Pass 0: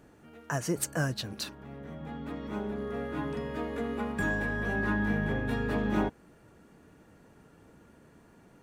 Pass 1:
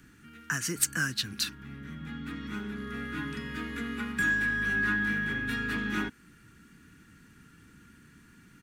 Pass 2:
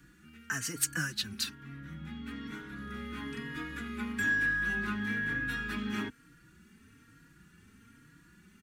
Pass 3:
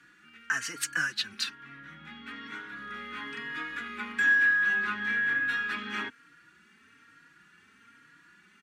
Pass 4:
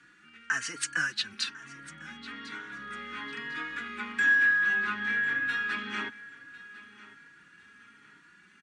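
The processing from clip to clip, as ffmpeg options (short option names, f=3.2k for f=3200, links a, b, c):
-filter_complex "[0:a]firequalizer=gain_entry='entry(250,0);entry(590,-23);entry(1400,4)':delay=0.05:min_phase=1,acrossover=split=270|630|6300[a][b][c][d];[a]acompressor=threshold=-41dB:ratio=6[e];[e][b][c][d]amix=inputs=4:normalize=0,volume=2.5dB"
-filter_complex "[0:a]asplit=2[a][b];[b]adelay=3.7,afreqshift=1.1[c];[a][c]amix=inputs=2:normalize=1"
-af "bandpass=f=1.8k:t=q:w=0.62:csg=0,volume=6.5dB"
-af "aecho=1:1:1050|2100|3150:0.119|0.0392|0.0129,aresample=22050,aresample=44100"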